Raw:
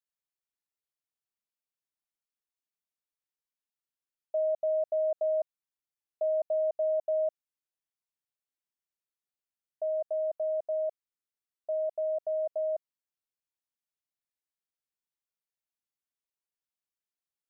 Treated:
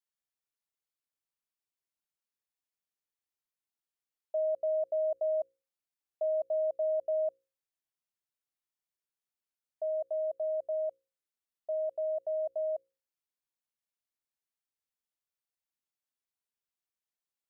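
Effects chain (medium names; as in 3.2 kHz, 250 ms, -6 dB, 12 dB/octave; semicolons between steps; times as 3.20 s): hum notches 60/120/180/240/300/360/420/480/540 Hz; trim -2 dB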